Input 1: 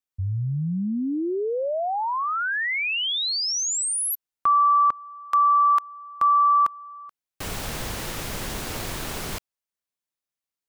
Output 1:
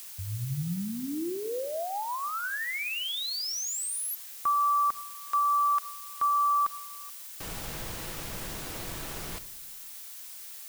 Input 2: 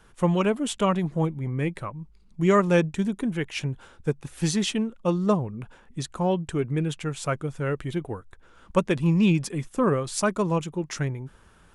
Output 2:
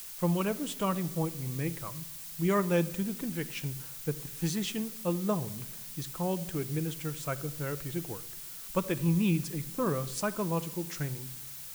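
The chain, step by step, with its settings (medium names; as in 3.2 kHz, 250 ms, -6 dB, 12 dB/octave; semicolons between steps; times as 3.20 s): added noise blue -36 dBFS; simulated room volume 3300 m³, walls furnished, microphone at 0.69 m; trim -8 dB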